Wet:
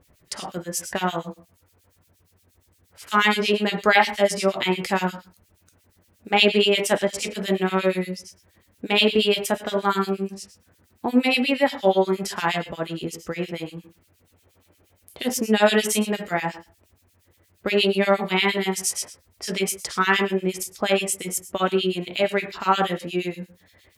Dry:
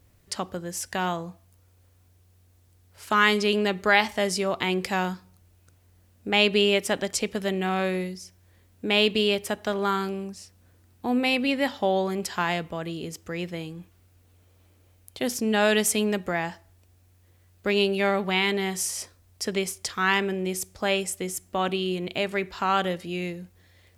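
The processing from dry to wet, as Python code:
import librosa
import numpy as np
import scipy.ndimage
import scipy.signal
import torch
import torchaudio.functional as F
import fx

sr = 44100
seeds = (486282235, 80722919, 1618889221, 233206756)

y = fx.low_shelf(x, sr, hz=100.0, db=-7.5)
y = fx.rev_gated(y, sr, seeds[0], gate_ms=170, shape='falling', drr_db=5.0)
y = fx.harmonic_tremolo(y, sr, hz=8.5, depth_pct=100, crossover_hz=2100.0)
y = F.gain(torch.from_numpy(y), 7.0).numpy()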